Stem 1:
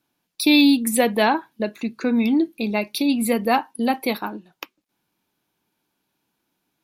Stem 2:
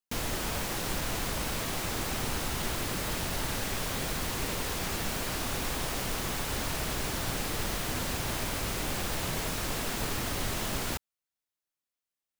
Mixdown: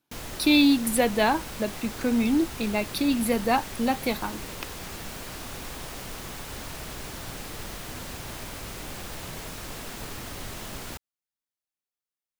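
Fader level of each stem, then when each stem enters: -4.0 dB, -5.0 dB; 0.00 s, 0.00 s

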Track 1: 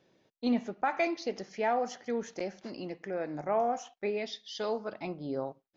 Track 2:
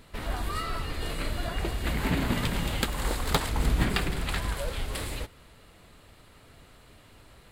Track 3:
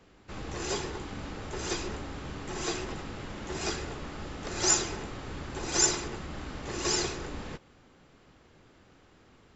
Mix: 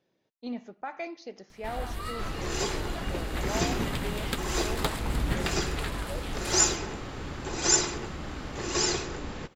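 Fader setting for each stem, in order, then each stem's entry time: -7.5 dB, -4.0 dB, +2.0 dB; 0.00 s, 1.50 s, 1.90 s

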